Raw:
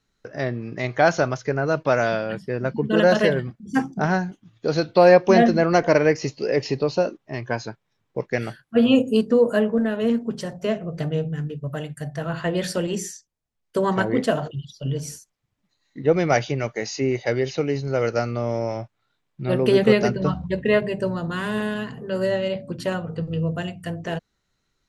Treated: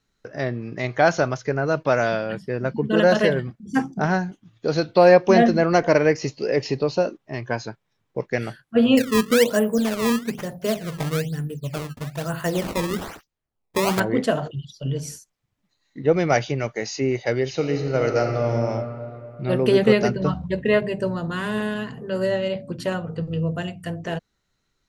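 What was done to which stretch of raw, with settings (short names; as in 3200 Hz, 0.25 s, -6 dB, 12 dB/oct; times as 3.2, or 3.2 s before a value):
8.97–14 decimation with a swept rate 17×, swing 160% 1.1 Hz
17.48–18.5 reverb throw, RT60 3 s, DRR 3.5 dB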